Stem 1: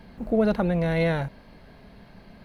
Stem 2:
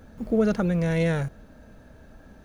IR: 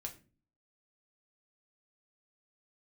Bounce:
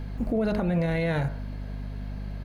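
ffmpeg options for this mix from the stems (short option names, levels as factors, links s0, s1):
-filter_complex "[0:a]bandreject=f=52.73:t=h:w=4,bandreject=f=105.46:t=h:w=4,bandreject=f=158.19:t=h:w=4,bandreject=f=210.92:t=h:w=4,bandreject=f=263.65:t=h:w=4,bandreject=f=316.38:t=h:w=4,bandreject=f=369.11:t=h:w=4,bandreject=f=421.84:t=h:w=4,bandreject=f=474.57:t=h:w=4,bandreject=f=527.3:t=h:w=4,bandreject=f=580.03:t=h:w=4,bandreject=f=632.76:t=h:w=4,bandreject=f=685.49:t=h:w=4,bandreject=f=738.22:t=h:w=4,bandreject=f=790.95:t=h:w=4,bandreject=f=843.68:t=h:w=4,bandreject=f=896.41:t=h:w=4,bandreject=f=949.14:t=h:w=4,bandreject=f=1001.87:t=h:w=4,bandreject=f=1054.6:t=h:w=4,bandreject=f=1107.33:t=h:w=4,bandreject=f=1160.06:t=h:w=4,bandreject=f=1212.79:t=h:w=4,bandreject=f=1265.52:t=h:w=4,bandreject=f=1318.25:t=h:w=4,bandreject=f=1370.98:t=h:w=4,bandreject=f=1423.71:t=h:w=4,bandreject=f=1476.44:t=h:w=4,bandreject=f=1529.17:t=h:w=4,bandreject=f=1581.9:t=h:w=4,bandreject=f=1634.63:t=h:w=4,bandreject=f=1687.36:t=h:w=4,bandreject=f=1740.09:t=h:w=4,bandreject=f=1792.82:t=h:w=4,bandreject=f=1845.55:t=h:w=4,bandreject=f=1898.28:t=h:w=4,volume=1.33,asplit=2[s0][s1];[1:a]adelay=0.6,volume=0.75[s2];[s1]apad=whole_len=107899[s3];[s2][s3]sidechaincompress=threshold=0.0447:ratio=8:attack=16:release=256[s4];[s0][s4]amix=inputs=2:normalize=0,aeval=exprs='val(0)+0.0224*(sin(2*PI*50*n/s)+sin(2*PI*2*50*n/s)/2+sin(2*PI*3*50*n/s)/3+sin(2*PI*4*50*n/s)/4+sin(2*PI*5*50*n/s)/5)':c=same,alimiter=limit=0.119:level=0:latency=1:release=70"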